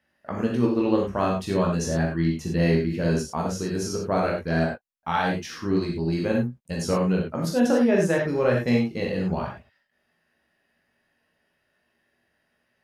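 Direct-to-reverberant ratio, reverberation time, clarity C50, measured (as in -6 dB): -2.0 dB, no single decay rate, 4.0 dB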